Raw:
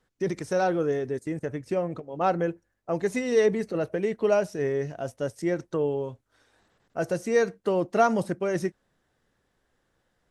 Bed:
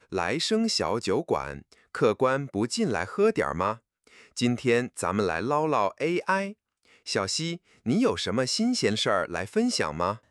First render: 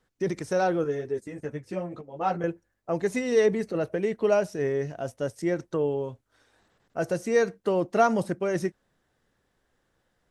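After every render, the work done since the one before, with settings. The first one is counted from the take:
0:00.84–0:02.44: string-ensemble chorus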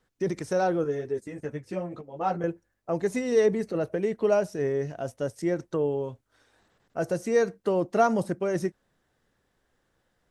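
dynamic equaliser 2,600 Hz, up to −4 dB, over −40 dBFS, Q 0.73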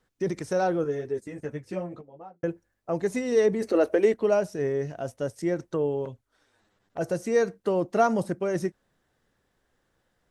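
0:01.77–0:02.43: fade out and dull
0:03.62–0:04.14: drawn EQ curve 100 Hz 0 dB, 150 Hz −22 dB, 240 Hz +7 dB
0:06.05–0:07.01: flanger swept by the level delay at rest 11.2 ms, full sweep at −33.5 dBFS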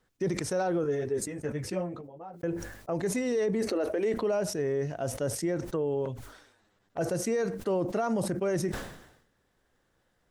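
brickwall limiter −21.5 dBFS, peak gain reduction 11 dB
level that may fall only so fast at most 70 dB per second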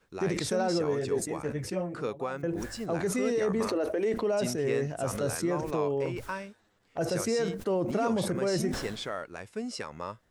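mix in bed −11 dB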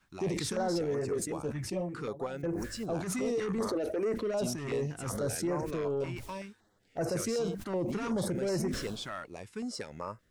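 soft clipping −25 dBFS, distortion −16 dB
notch on a step sequencer 5.3 Hz 470–3,400 Hz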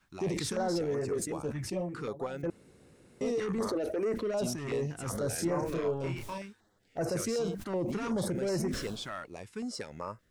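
0:02.50–0:03.21: fill with room tone
0:05.35–0:06.38: double-tracking delay 30 ms −3.5 dB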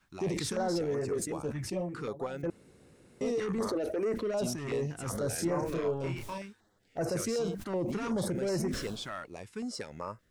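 no processing that can be heard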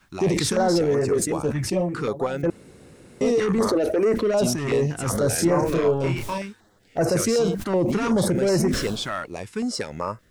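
level +11 dB

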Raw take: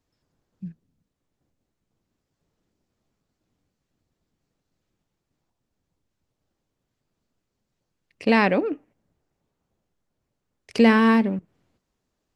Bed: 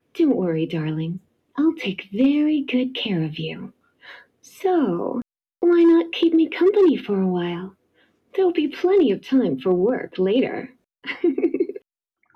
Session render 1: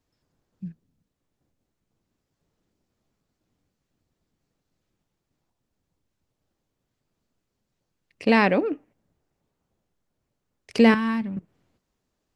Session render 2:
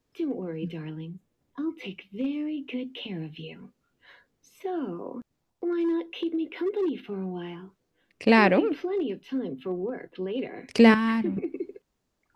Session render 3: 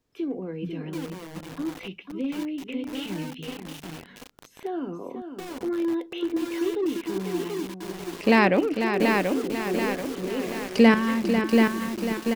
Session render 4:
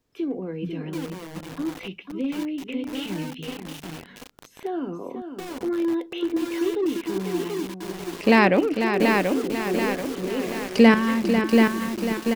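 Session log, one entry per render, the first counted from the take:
0:10.94–0:11.37: drawn EQ curve 140 Hz 0 dB, 440 Hz −18 dB, 1,100 Hz −8 dB
mix in bed −12 dB
single-tap delay 495 ms −8 dB; feedback echo at a low word length 734 ms, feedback 55%, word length 6 bits, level −3.5 dB
level +2 dB

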